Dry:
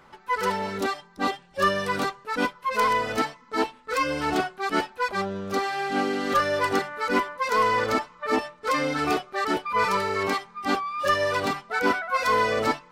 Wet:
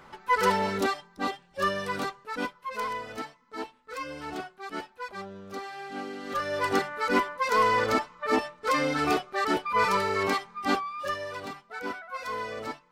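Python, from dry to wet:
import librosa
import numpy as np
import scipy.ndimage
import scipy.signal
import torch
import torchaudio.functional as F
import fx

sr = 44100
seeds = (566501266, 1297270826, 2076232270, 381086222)

y = fx.gain(x, sr, db=fx.line((0.68, 2.0), (1.3, -5.0), (2.19, -5.0), (3.05, -11.5), (6.22, -11.5), (6.77, -1.0), (10.72, -1.0), (11.24, -12.0)))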